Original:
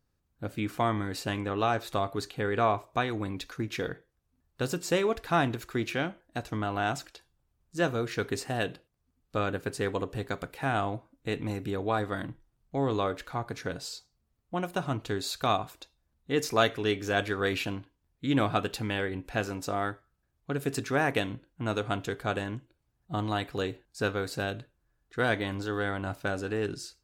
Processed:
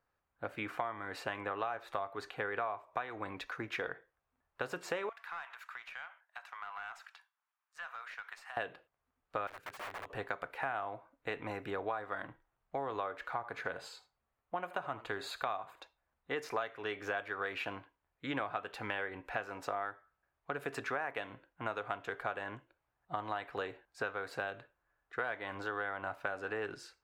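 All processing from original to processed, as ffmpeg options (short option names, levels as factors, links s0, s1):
-filter_complex "[0:a]asettb=1/sr,asplit=3[s0][s1][s2];[s0]atrim=end=5.094[s3];[s1]atrim=start=5.09:end=8.57,asetpts=PTS-STARTPTS,afade=t=in:d=0.004:c=qsin,afade=t=out:st=3.476:d=0.004:c=qsin,highpass=f=980:w=0.5412,highpass=f=980:w=1.3066,aeval=exprs='(tanh(22.4*val(0)+0.55)-tanh(0.55))/22.4':c=same,acompressor=threshold=0.00501:ratio=3:attack=3.2:release=140:knee=1:detection=peak[s4];[s2]atrim=start=8.566[s5];[s3][s4]acrossfade=d=0.004:c1=hsin:c2=qsin[s6];[s6][s5]acrossfade=d=0.004:c1=qsin:c2=hsin,asettb=1/sr,asplit=3[s7][s8][s9];[s7]atrim=end=9.474[s10];[s8]atrim=start=9.47:end=10.1,asetpts=PTS-STARTPTS,afade=t=in:d=0.004:c=qsin,afade=t=out:st=0.626:d=0.004:c=qsin,equalizer=f=590:w=0.32:g=-14.5,aeval=exprs='(mod(79.4*val(0)+1,2)-1)/79.4':c=same[s11];[s9]atrim=start=10.096[s12];[s10][s11]acrossfade=d=0.004:c1=hsin:c2=qsin[s13];[s13][s12]acrossfade=d=0.004:c1=qsin:c2=hsin,asettb=1/sr,asplit=3[s14][s15][s16];[s14]atrim=end=13.354[s17];[s15]atrim=start=13.35:end=15.8,asetpts=PTS-STARTPTS,afade=t=in:d=0.004:c=qsin,afade=t=out:st=2.446:d=0.004:c=qsin,bandreject=f=5600:w=6,aecho=1:1:78:0.133,atrim=end_sample=108045[s18];[s16]atrim=start=15.796[s19];[s17][s18]acrossfade=d=0.004:c1=hsin:c2=qsin[s20];[s20][s19]acrossfade=d=0.004:c1=qsin:c2=hsin,acrossover=split=550 2400:gain=0.112 1 0.112[s21][s22][s23];[s21][s22][s23]amix=inputs=3:normalize=0,acompressor=threshold=0.0112:ratio=8,volume=1.88"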